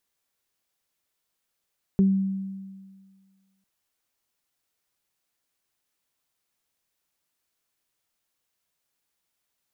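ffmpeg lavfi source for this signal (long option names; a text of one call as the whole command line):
ffmpeg -f lavfi -i "aevalsrc='0.188*pow(10,-3*t/1.73)*sin(2*PI*193*t)+0.0596*pow(10,-3*t/0.23)*sin(2*PI*386*t)':duration=1.65:sample_rate=44100" out.wav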